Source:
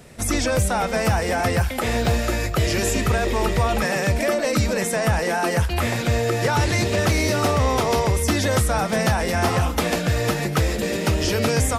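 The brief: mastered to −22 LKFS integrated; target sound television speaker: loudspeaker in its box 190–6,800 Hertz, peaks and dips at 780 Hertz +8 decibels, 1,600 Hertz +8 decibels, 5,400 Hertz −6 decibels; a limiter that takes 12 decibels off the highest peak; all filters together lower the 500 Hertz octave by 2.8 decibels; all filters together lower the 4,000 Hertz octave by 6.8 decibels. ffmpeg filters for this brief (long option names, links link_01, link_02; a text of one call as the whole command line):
ffmpeg -i in.wav -af "equalizer=frequency=500:width_type=o:gain=-5.5,equalizer=frequency=4000:width_type=o:gain=-7,alimiter=limit=-23dB:level=0:latency=1,highpass=frequency=190:width=0.5412,highpass=frequency=190:width=1.3066,equalizer=frequency=780:width_type=q:width=4:gain=8,equalizer=frequency=1600:width_type=q:width=4:gain=8,equalizer=frequency=5400:width_type=q:width=4:gain=-6,lowpass=frequency=6800:width=0.5412,lowpass=frequency=6800:width=1.3066,volume=8.5dB" out.wav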